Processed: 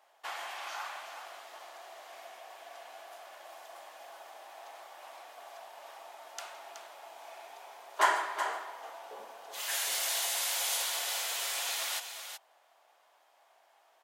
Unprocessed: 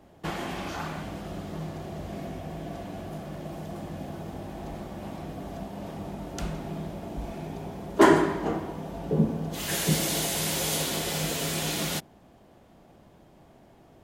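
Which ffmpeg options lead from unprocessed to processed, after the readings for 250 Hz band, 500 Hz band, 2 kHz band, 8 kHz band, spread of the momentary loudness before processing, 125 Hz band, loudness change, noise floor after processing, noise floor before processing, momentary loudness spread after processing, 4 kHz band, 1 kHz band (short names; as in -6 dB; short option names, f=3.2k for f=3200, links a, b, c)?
-33.5 dB, -14.5 dB, -2.5 dB, -2.5 dB, 13 LU, under -40 dB, -3.5 dB, -67 dBFS, -56 dBFS, 20 LU, -2.5 dB, -3.5 dB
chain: -filter_complex "[0:a]highpass=f=750:w=0.5412,highpass=f=750:w=1.3066,asplit=2[a][b];[b]aecho=0:1:373:0.376[c];[a][c]amix=inputs=2:normalize=0,volume=-3dB"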